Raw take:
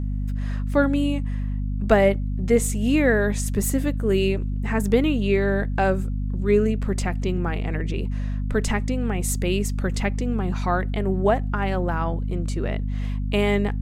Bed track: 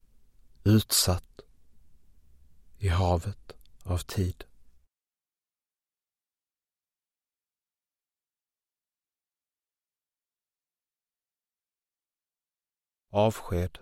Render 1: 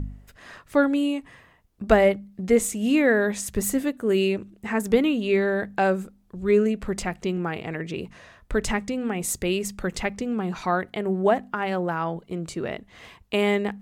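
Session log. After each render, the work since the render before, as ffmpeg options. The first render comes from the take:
-af "bandreject=f=50:t=h:w=4,bandreject=f=100:t=h:w=4,bandreject=f=150:t=h:w=4,bandreject=f=200:t=h:w=4,bandreject=f=250:t=h:w=4"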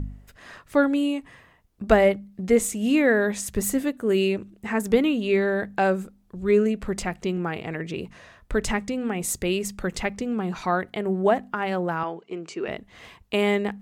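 -filter_complex "[0:a]asettb=1/sr,asplit=3[s0][s1][s2];[s0]atrim=end=12.034[s3];[s1]atrim=start=12.03:end=12.68,asetpts=PTS-STARTPTS,afade=t=in:d=0.004:c=qsin,afade=t=out:st=0.646:d=0.004:c=qsin,highpass=320,equalizer=f=400:t=q:w=4:g=6,equalizer=f=570:t=q:w=4:g=-7,equalizer=f=2600:t=q:w=4:g=6,equalizer=f=3800:t=q:w=4:g=-6,lowpass=f=6800:w=0.5412,lowpass=f=6800:w=1.3066[s4];[s2]atrim=start=12.676[s5];[s3][s4]acrossfade=d=0.004:c1=hsin:c2=qsin[s6];[s6][s5]acrossfade=d=0.004:c1=qsin:c2=hsin"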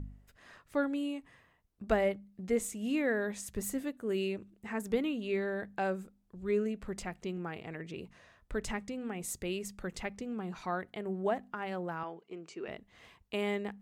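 -af "volume=0.266"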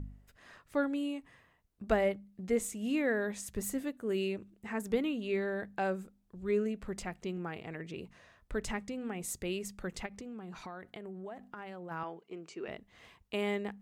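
-filter_complex "[0:a]asplit=3[s0][s1][s2];[s0]afade=t=out:st=10.05:d=0.02[s3];[s1]acompressor=threshold=0.01:ratio=10:attack=3.2:release=140:knee=1:detection=peak,afade=t=in:st=10.05:d=0.02,afade=t=out:st=11.9:d=0.02[s4];[s2]afade=t=in:st=11.9:d=0.02[s5];[s3][s4][s5]amix=inputs=3:normalize=0"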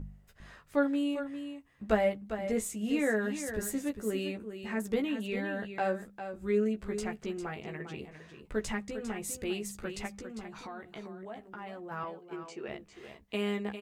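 -filter_complex "[0:a]asplit=2[s0][s1];[s1]adelay=14,volume=0.631[s2];[s0][s2]amix=inputs=2:normalize=0,aecho=1:1:401:0.335"

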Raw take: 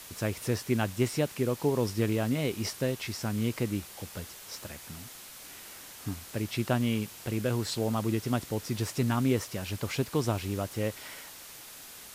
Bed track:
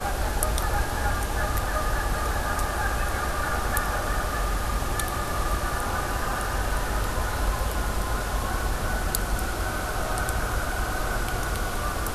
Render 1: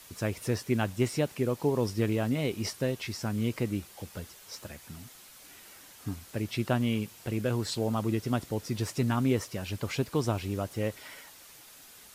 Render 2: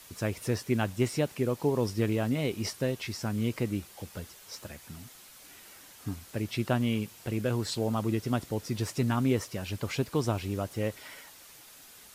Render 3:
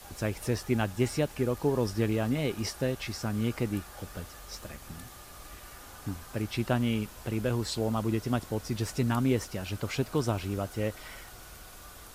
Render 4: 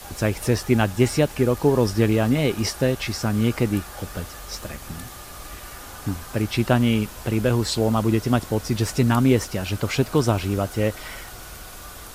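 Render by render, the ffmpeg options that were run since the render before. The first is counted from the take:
-af "afftdn=nr=6:nf=-47"
-af anull
-filter_complex "[1:a]volume=0.075[s0];[0:a][s0]amix=inputs=2:normalize=0"
-af "volume=2.82"

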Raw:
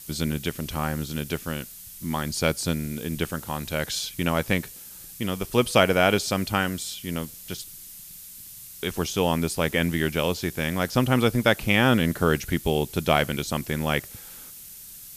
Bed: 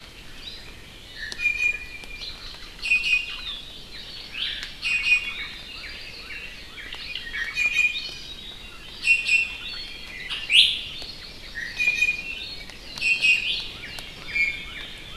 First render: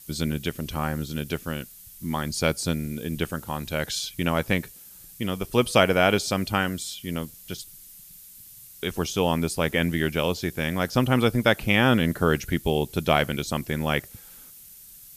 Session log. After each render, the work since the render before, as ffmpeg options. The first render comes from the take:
-af "afftdn=nr=6:nf=-43"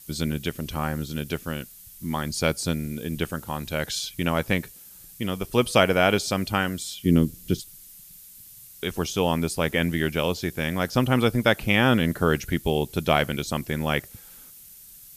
-filter_complex "[0:a]asettb=1/sr,asplit=3[s0][s1][s2];[s0]atrim=end=7.054[s3];[s1]atrim=start=7.05:end=7.6,asetpts=PTS-STARTPTS,afade=t=in:d=0.004:c=qsin,afade=t=out:st=0.546:d=0.004:c=qsin,lowshelf=f=490:t=q:w=1.5:g=11[s4];[s2]atrim=start=7.596[s5];[s3][s4]acrossfade=d=0.004:c1=hsin:c2=qsin[s6];[s6][s5]acrossfade=d=0.004:c1=qsin:c2=hsin"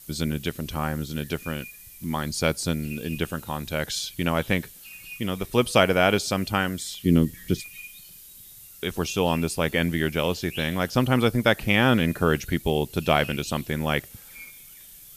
-filter_complex "[1:a]volume=0.0841[s0];[0:a][s0]amix=inputs=2:normalize=0"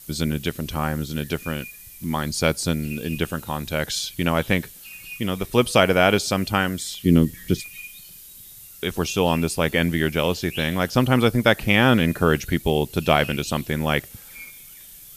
-af "volume=1.41,alimiter=limit=0.708:level=0:latency=1"

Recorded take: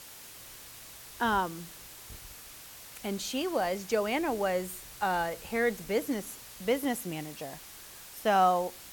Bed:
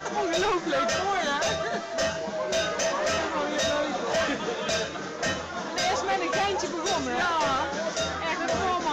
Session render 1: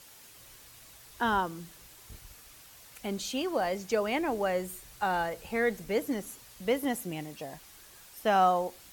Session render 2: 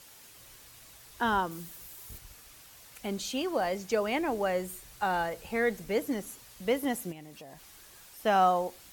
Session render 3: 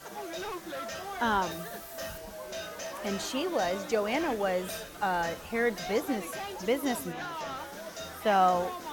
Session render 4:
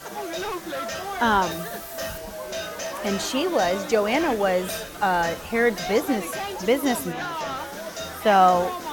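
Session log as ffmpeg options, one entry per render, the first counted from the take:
-af "afftdn=nr=6:nf=-49"
-filter_complex "[0:a]asettb=1/sr,asplit=3[s0][s1][s2];[s0]atrim=end=1.514[s3];[s1]atrim=start=1.51:end=2.18,asetpts=PTS-STARTPTS,afade=t=in:d=0.004:c=qsin,afade=t=out:st=0.666:d=0.004:c=qsin,highshelf=f=10000:g=11[s4];[s2]atrim=start=2.176[s5];[s3][s4]acrossfade=d=0.004:c1=hsin:c2=qsin[s6];[s6][s5]acrossfade=d=0.004:c1=qsin:c2=hsin,asplit=3[s7][s8][s9];[s7]afade=t=out:st=7.11:d=0.02[s10];[s8]acompressor=threshold=0.00501:ratio=3:attack=3.2:release=140:knee=1:detection=peak,afade=t=in:st=7.11:d=0.02,afade=t=out:st=8.18:d=0.02[s11];[s9]afade=t=in:st=8.18:d=0.02[s12];[s10][s11][s12]amix=inputs=3:normalize=0"
-filter_complex "[1:a]volume=0.237[s0];[0:a][s0]amix=inputs=2:normalize=0"
-af "volume=2.37"

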